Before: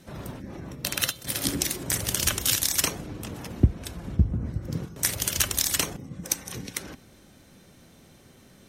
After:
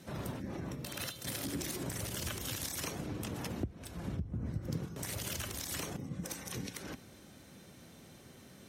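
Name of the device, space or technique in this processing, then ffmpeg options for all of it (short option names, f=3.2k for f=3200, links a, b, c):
podcast mastering chain: -af "highpass=64,deesser=0.5,acompressor=threshold=-32dB:ratio=3,alimiter=limit=-24dB:level=0:latency=1:release=155,volume=-1dB" -ar 48000 -c:a libmp3lame -b:a 96k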